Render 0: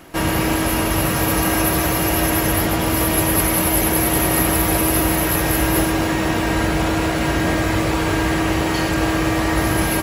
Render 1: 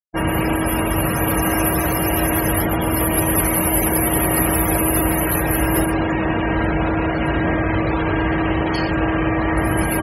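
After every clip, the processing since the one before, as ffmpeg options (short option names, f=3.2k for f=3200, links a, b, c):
-af "afftfilt=real='re*gte(hypot(re,im),0.0794)':imag='im*gte(hypot(re,im),0.0794)':win_size=1024:overlap=0.75"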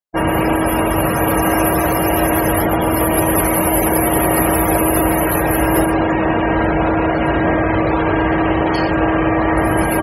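-af "equalizer=f=670:t=o:w=2.4:g=6.5"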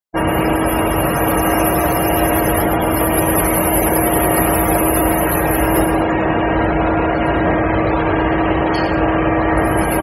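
-af "aecho=1:1:104:0.282"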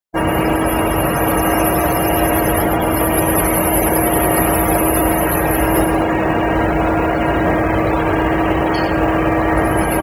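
-af "acrusher=bits=8:mode=log:mix=0:aa=0.000001"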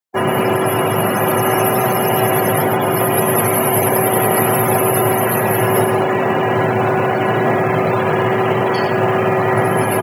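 -af "afreqshift=58"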